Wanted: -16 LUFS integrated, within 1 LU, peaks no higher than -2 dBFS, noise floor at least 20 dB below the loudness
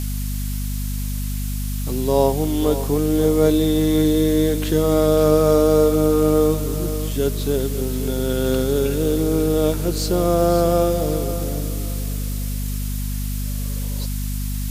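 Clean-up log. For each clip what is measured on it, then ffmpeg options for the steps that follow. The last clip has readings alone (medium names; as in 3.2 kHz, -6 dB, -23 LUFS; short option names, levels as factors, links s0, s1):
hum 50 Hz; highest harmonic 250 Hz; hum level -22 dBFS; noise floor -24 dBFS; noise floor target -40 dBFS; loudness -20.0 LUFS; peak level -3.5 dBFS; loudness target -16.0 LUFS
-> -af "bandreject=f=50:t=h:w=6,bandreject=f=100:t=h:w=6,bandreject=f=150:t=h:w=6,bandreject=f=200:t=h:w=6,bandreject=f=250:t=h:w=6"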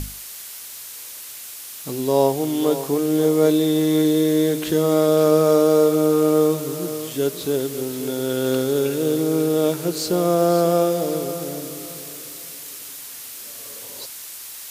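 hum not found; noise floor -36 dBFS; noise floor target -40 dBFS
-> -af "afftdn=nr=6:nf=-36"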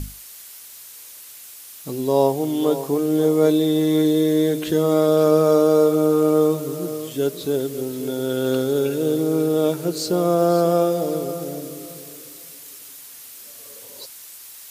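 noise floor -41 dBFS; loudness -19.5 LUFS; peak level -4.5 dBFS; loudness target -16.0 LUFS
-> -af "volume=1.5,alimiter=limit=0.794:level=0:latency=1"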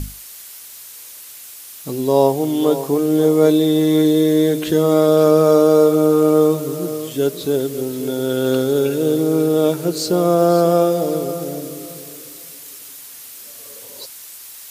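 loudness -16.0 LUFS; peak level -2.0 dBFS; noise floor -38 dBFS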